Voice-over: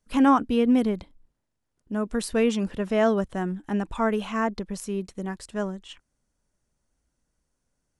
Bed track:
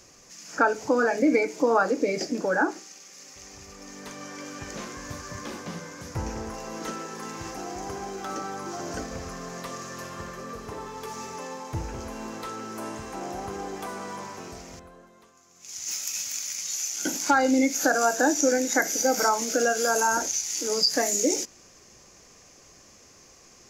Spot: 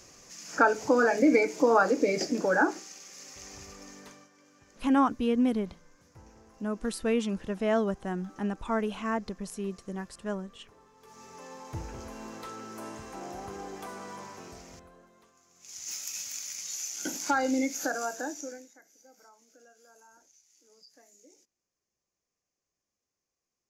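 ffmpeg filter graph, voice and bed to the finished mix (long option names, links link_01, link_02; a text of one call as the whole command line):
ffmpeg -i stem1.wav -i stem2.wav -filter_complex "[0:a]adelay=4700,volume=-5dB[link_01];[1:a]volume=15.5dB,afade=type=out:start_time=3.61:duration=0.68:silence=0.0841395,afade=type=in:start_time=10.98:duration=0.77:silence=0.158489,afade=type=out:start_time=17.54:duration=1.19:silence=0.0354813[link_02];[link_01][link_02]amix=inputs=2:normalize=0" out.wav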